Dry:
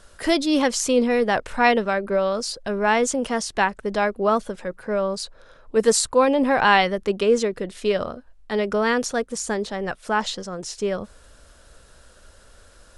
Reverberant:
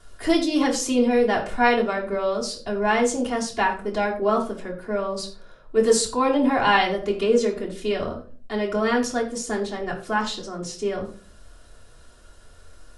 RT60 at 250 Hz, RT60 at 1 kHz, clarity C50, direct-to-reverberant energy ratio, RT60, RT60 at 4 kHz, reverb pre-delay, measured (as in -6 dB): 0.60 s, 0.35 s, 9.5 dB, -7.0 dB, 0.40 s, 0.30 s, 3 ms